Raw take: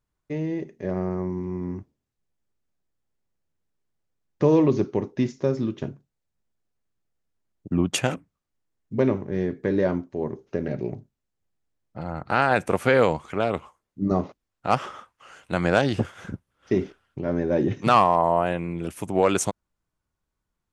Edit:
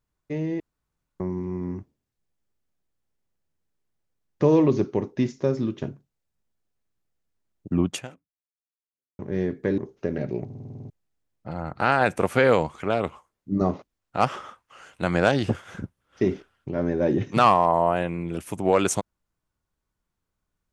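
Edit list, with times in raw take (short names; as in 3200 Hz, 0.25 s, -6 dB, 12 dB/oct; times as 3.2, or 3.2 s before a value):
0.6–1.2 room tone
7.86–9.19 fade out exponential
9.78–10.28 cut
10.95 stutter in place 0.05 s, 9 plays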